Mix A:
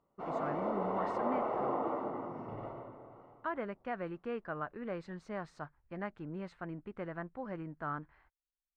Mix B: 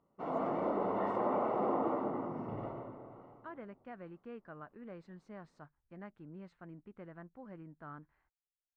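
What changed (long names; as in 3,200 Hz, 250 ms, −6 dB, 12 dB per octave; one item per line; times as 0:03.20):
speech −11.5 dB
master: add parametric band 210 Hz +5 dB 1.7 octaves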